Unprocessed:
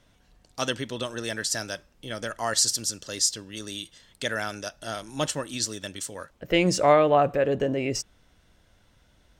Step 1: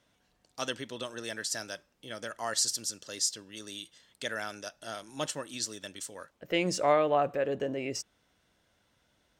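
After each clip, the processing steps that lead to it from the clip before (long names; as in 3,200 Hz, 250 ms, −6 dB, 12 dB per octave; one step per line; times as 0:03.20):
high-pass filter 200 Hz 6 dB per octave
level −6 dB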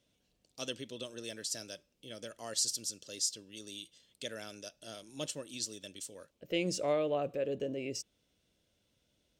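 flat-topped bell 1,200 Hz −10 dB
level −3.5 dB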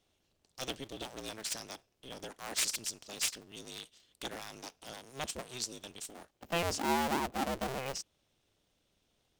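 sub-harmonics by changed cycles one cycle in 2, inverted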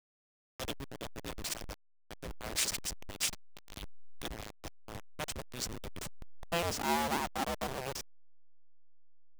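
hold until the input has moved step −34.5 dBFS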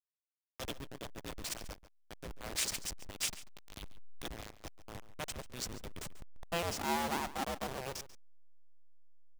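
slap from a distant wall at 24 metres, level −15 dB
level −2.5 dB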